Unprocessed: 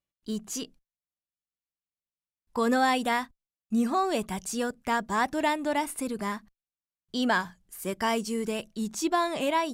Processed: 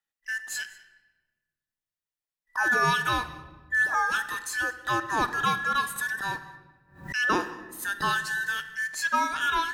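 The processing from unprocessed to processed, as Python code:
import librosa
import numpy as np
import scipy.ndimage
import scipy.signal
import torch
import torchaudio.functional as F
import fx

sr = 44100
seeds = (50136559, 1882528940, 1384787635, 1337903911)

y = fx.band_invert(x, sr, width_hz=2000)
y = y + 10.0 ** (-22.0 / 20.0) * np.pad(y, (int(196 * sr / 1000.0), 0))[:len(y)]
y = fx.room_shoebox(y, sr, seeds[0], volume_m3=1100.0, walls='mixed', distance_m=0.54)
y = fx.pre_swell(y, sr, db_per_s=120.0, at=(5.96, 7.99))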